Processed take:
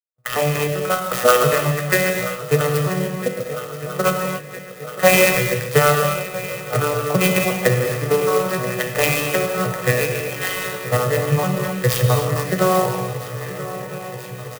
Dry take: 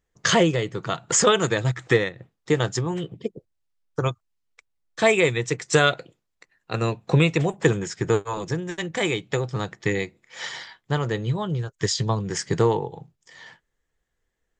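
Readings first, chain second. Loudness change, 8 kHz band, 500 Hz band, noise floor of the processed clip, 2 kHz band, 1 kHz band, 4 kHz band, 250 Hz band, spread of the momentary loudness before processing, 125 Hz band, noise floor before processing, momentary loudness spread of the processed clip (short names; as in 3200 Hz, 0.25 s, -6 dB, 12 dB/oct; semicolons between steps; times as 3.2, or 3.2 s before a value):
+4.5 dB, +3.0 dB, +5.5 dB, -34 dBFS, +5.5 dB, +7.0 dB, +2.0 dB, +2.5 dB, 14 LU, +4.0 dB, -77 dBFS, 13 LU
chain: arpeggiated vocoder minor triad, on B2, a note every 0.357 s; LPF 5700 Hz 12 dB/oct; gate with hold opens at -53 dBFS; HPF 800 Hz 6 dB/oct; notch 4000 Hz, Q 6.9; dynamic EQ 2800 Hz, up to +6 dB, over -50 dBFS, Q 1.6; comb 1.6 ms, depth 69%; transient shaper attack +3 dB, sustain +8 dB; AGC gain up to 13.5 dB; swung echo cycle 1.306 s, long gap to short 3:1, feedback 67%, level -15 dB; non-linear reverb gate 0.31 s flat, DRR 2 dB; clock jitter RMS 0.047 ms; gain -1 dB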